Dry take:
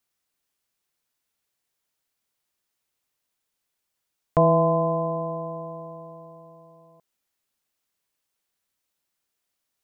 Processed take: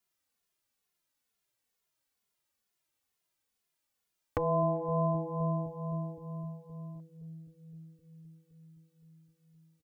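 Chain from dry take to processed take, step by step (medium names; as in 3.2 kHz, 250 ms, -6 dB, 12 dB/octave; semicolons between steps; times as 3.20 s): on a send: bucket-brigade echo 258 ms, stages 1024, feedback 81%, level -14.5 dB; on the sum: compression, threshold -23 dBFS, peak gain reduction 9 dB; endless flanger 2.4 ms -2.2 Hz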